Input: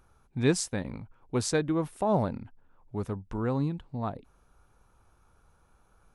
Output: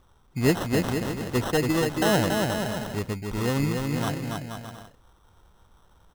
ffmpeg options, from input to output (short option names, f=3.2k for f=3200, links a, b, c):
-af "aecho=1:1:280|476|613.2|709.2|776.5:0.631|0.398|0.251|0.158|0.1,acrusher=samples=19:mix=1:aa=0.000001,volume=3dB"